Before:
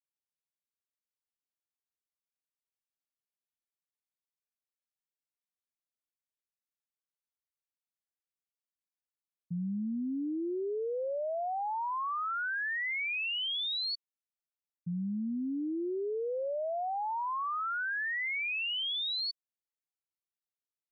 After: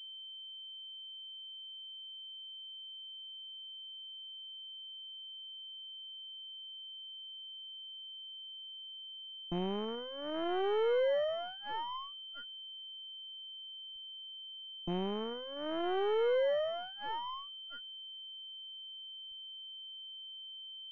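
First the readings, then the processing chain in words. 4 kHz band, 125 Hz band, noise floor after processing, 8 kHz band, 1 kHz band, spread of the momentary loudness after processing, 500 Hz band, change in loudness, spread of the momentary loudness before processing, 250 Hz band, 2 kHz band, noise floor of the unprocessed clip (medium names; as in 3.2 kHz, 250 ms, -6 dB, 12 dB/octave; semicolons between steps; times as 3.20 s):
-1.5 dB, -4.0 dB, -48 dBFS, no reading, -6.0 dB, 13 LU, +2.5 dB, -6.5 dB, 5 LU, -6.5 dB, -14.0 dB, under -85 dBFS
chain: comb filter that takes the minimum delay 1.9 ms; low-pass that closes with the level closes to 810 Hz, closed at -32.5 dBFS; gate -41 dBFS, range -17 dB; power-law waveshaper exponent 2; class-D stage that switches slowly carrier 3.1 kHz; trim +7.5 dB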